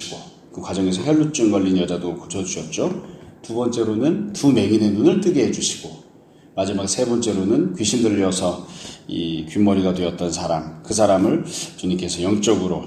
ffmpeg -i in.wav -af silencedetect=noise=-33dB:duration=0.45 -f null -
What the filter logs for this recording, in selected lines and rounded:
silence_start: 6.01
silence_end: 6.57 | silence_duration: 0.56